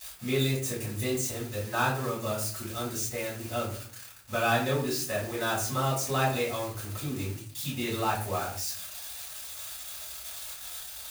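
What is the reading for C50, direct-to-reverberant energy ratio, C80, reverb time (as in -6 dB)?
5.5 dB, -7.0 dB, 10.5 dB, 0.50 s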